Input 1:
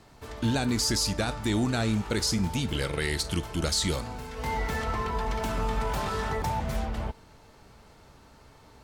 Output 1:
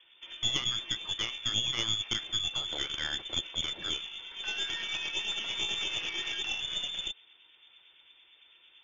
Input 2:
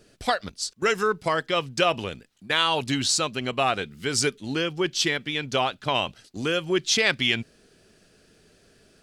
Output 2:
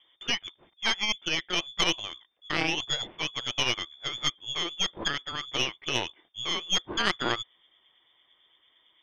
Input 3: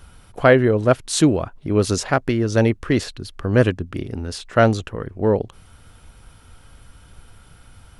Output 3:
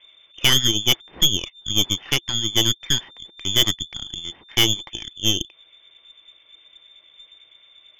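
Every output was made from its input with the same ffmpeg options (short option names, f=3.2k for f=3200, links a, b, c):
-filter_complex "[0:a]acrossover=split=2000[a][b];[a]aeval=exprs='val(0)*(1-0.5/2+0.5/2*cos(2*PI*8.9*n/s))':c=same[c];[b]aeval=exprs='val(0)*(1-0.5/2-0.5/2*cos(2*PI*8.9*n/s))':c=same[d];[c][d]amix=inputs=2:normalize=0,lowpass=f=3.1k:t=q:w=0.5098,lowpass=f=3.1k:t=q:w=0.6013,lowpass=f=3.1k:t=q:w=0.9,lowpass=f=3.1k:t=q:w=2.563,afreqshift=-3600,aeval=exprs='1*(cos(1*acos(clip(val(0)/1,-1,1)))-cos(1*PI/2))+0.178*(cos(8*acos(clip(val(0)/1,-1,1)))-cos(8*PI/2))':c=same,equalizer=f=340:t=o:w=0.3:g=8,volume=-3.5dB"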